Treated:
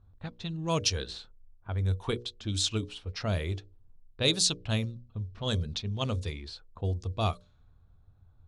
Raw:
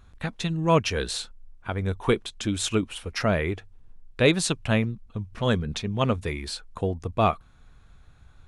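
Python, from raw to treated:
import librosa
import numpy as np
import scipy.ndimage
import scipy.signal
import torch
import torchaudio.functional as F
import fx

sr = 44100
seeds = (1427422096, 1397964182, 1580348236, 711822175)

y = fx.peak_eq(x, sr, hz=93.0, db=11.0, octaves=0.54)
y = fx.hum_notches(y, sr, base_hz=60, count=10)
y = fx.env_lowpass(y, sr, base_hz=910.0, full_db=-16.0)
y = fx.high_shelf_res(y, sr, hz=3000.0, db=fx.steps((0.0, 12.5), (0.95, 6.5), (2.18, 12.5)), q=1.5)
y = y * librosa.db_to_amplitude(-9.0)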